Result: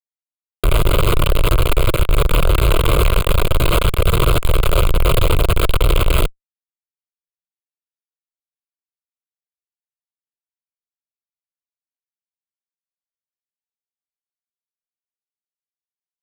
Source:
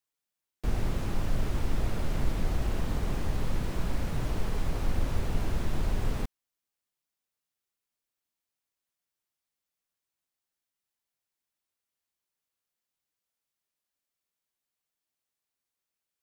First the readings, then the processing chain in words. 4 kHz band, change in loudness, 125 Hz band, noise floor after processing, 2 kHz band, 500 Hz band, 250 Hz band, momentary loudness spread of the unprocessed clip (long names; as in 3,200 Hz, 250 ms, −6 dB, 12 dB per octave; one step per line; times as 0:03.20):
+22.0 dB, +16.0 dB, +15.0 dB, below −85 dBFS, +18.5 dB, +19.5 dB, +11.0 dB, 2 LU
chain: fuzz pedal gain 53 dB, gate −54 dBFS
phaser with its sweep stopped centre 1,200 Hz, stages 8
level +4 dB